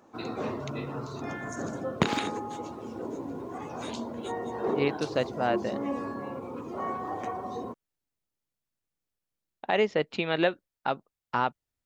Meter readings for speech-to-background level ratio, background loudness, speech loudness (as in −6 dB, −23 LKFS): 5.0 dB, −34.5 LKFS, −29.5 LKFS